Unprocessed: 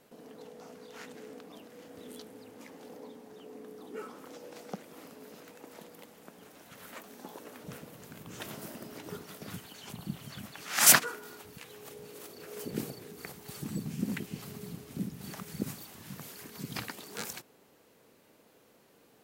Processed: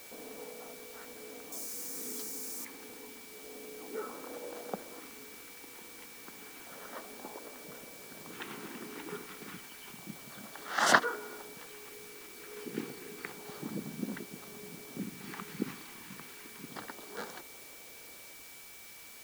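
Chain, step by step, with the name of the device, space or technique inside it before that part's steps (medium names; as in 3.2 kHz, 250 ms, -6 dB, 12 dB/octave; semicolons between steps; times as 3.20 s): shortwave radio (band-pass 280–2700 Hz; tremolo 0.45 Hz, depth 51%; LFO notch square 0.3 Hz 610–2400 Hz; whistle 2.3 kHz -61 dBFS; white noise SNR 10 dB); 1.52–2.65 s: resonant high shelf 4.5 kHz +10.5 dB, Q 1.5; trim +5 dB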